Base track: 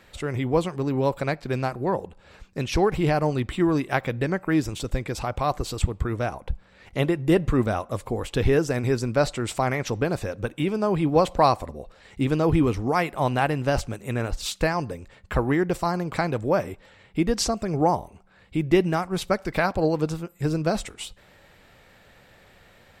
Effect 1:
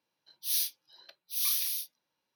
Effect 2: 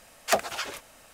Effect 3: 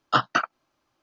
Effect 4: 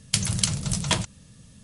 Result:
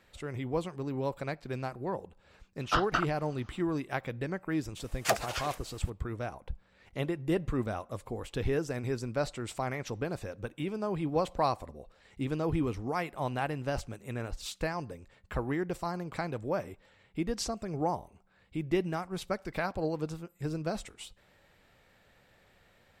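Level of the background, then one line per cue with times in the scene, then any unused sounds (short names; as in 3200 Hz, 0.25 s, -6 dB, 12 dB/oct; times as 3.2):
base track -10 dB
2.59 add 3 -8.5 dB + per-bin compression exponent 0.6
4.77 add 2 -4 dB
not used: 1, 4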